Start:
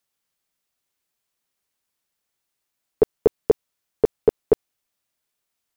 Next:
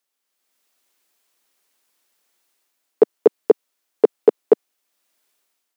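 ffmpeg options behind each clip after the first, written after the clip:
ffmpeg -i in.wav -af "highpass=frequency=240:width=0.5412,highpass=frequency=240:width=1.3066,dynaudnorm=framelen=130:gausssize=7:maxgain=10.5dB" out.wav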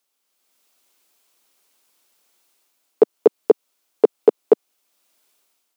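ffmpeg -i in.wav -af "equalizer=frequency=1800:width_type=o:width=0.37:gain=-5,alimiter=limit=-6dB:level=0:latency=1:release=199,volume=4.5dB" out.wav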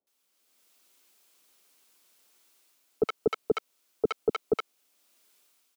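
ffmpeg -i in.wav -filter_complex "[0:a]asoftclip=type=tanh:threshold=-17dB,acrossover=split=770[link_01][link_02];[link_02]adelay=70[link_03];[link_01][link_03]amix=inputs=2:normalize=0" out.wav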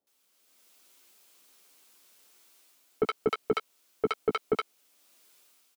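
ffmpeg -i in.wav -filter_complex "[0:a]asoftclip=type=tanh:threshold=-22.5dB,asplit=2[link_01][link_02];[link_02]adelay=14,volume=-10dB[link_03];[link_01][link_03]amix=inputs=2:normalize=0,volume=3.5dB" out.wav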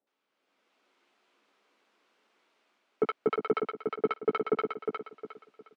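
ffmpeg -i in.wav -filter_complex "[0:a]highpass=170,lowpass=2100,asplit=2[link_01][link_02];[link_02]aecho=0:1:358|716|1074|1432:0.562|0.18|0.0576|0.0184[link_03];[link_01][link_03]amix=inputs=2:normalize=0" out.wav

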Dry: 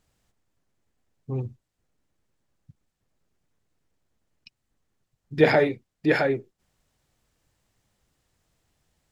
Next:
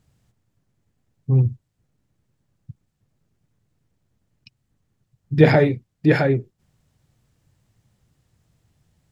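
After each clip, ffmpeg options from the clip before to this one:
ffmpeg -i in.wav -af "equalizer=frequency=120:width=0.72:gain=13.5,volume=1dB" out.wav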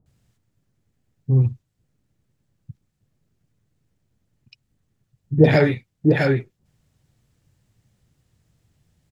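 ffmpeg -i in.wav -filter_complex "[0:a]acrossover=split=920[link_01][link_02];[link_02]adelay=60[link_03];[link_01][link_03]amix=inputs=2:normalize=0" out.wav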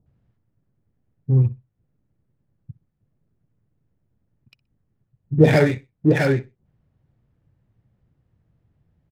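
ffmpeg -i in.wav -af "adynamicsmooth=sensitivity=7.5:basefreq=1700,aecho=1:1:62|124:0.0794|0.0199" out.wav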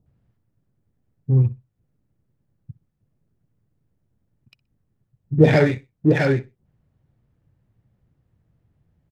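ffmpeg -i in.wav -filter_complex "[0:a]acrossover=split=6600[link_01][link_02];[link_02]acompressor=threshold=-54dB:ratio=4:attack=1:release=60[link_03];[link_01][link_03]amix=inputs=2:normalize=0" out.wav

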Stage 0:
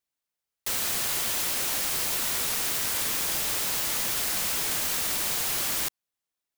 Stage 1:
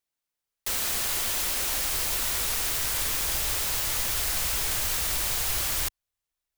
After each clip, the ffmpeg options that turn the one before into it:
ffmpeg -i in.wav -af "asubboost=boost=9:cutoff=70" out.wav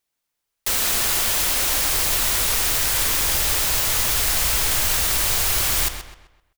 ffmpeg -i in.wav -filter_complex "[0:a]asplit=2[link_01][link_02];[link_02]adelay=129,lowpass=frequency=4200:poles=1,volume=-8dB,asplit=2[link_03][link_04];[link_04]adelay=129,lowpass=frequency=4200:poles=1,volume=0.4,asplit=2[link_05][link_06];[link_06]adelay=129,lowpass=frequency=4200:poles=1,volume=0.4,asplit=2[link_07][link_08];[link_08]adelay=129,lowpass=frequency=4200:poles=1,volume=0.4,asplit=2[link_09][link_10];[link_10]adelay=129,lowpass=frequency=4200:poles=1,volume=0.4[link_11];[link_01][link_03][link_05][link_07][link_09][link_11]amix=inputs=6:normalize=0,volume=7dB" out.wav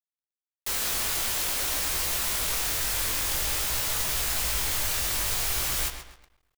ffmpeg -i in.wav -af "flanger=delay=16:depth=7.1:speed=0.5,acrusher=bits=9:dc=4:mix=0:aa=0.000001,volume=-4dB" out.wav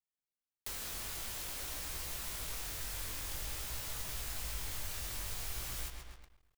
ffmpeg -i in.wav -af "acompressor=threshold=-40dB:ratio=2.5,lowshelf=frequency=220:gain=7.5,volume=-4.5dB" out.wav

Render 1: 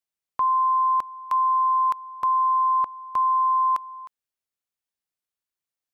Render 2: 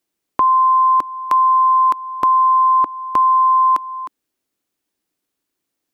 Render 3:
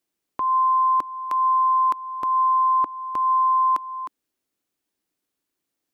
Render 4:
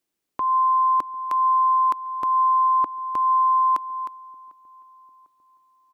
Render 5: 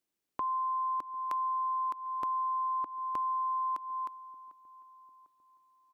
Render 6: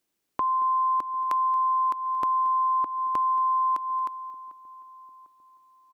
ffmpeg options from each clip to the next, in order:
ffmpeg -i in.wav -filter_complex "[0:a]equalizer=frequency=300:width=1.3:gain=14.5,asplit=2[link_01][link_02];[link_02]acompressor=threshold=-30dB:ratio=6,volume=1.5dB[link_03];[link_01][link_03]amix=inputs=2:normalize=0,volume=4dB" out.wav
ffmpeg -i in.wav -af "alimiter=limit=-12dB:level=0:latency=1:release=276,volume=-3.5dB" out.wav
ffmpeg -i in.wav -filter_complex "[0:a]asplit=2[link_01][link_02];[link_02]adelay=749,lowpass=frequency=1200:poles=1,volume=-24dB,asplit=2[link_03][link_04];[link_04]adelay=749,lowpass=frequency=1200:poles=1,volume=0.53,asplit=2[link_05][link_06];[link_06]adelay=749,lowpass=frequency=1200:poles=1,volume=0.53[link_07];[link_01][link_03][link_05][link_07]amix=inputs=4:normalize=0" out.wav
ffmpeg -i in.wav -af "acompressor=threshold=-25dB:ratio=6,volume=-6dB" out.wav
ffmpeg -i in.wav -af "aecho=1:1:227:0.119,volume=7.5dB" out.wav

